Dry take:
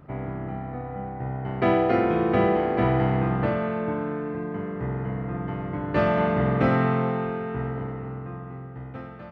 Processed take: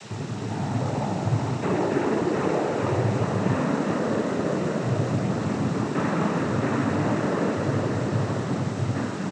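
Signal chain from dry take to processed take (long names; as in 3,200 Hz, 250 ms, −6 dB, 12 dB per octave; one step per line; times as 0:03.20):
Bessel low-pass filter 1,800 Hz
parametric band 620 Hz −14 dB 0.28 octaves
reversed playback
downward compressor, threshold −31 dBFS, peak gain reduction 12.5 dB
reversed playback
leveller curve on the samples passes 1
automatic gain control gain up to 6.5 dB
background noise pink −40 dBFS
cochlear-implant simulation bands 12
on a send: echo with shifted repeats 371 ms, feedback 62%, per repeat +69 Hz, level −7 dB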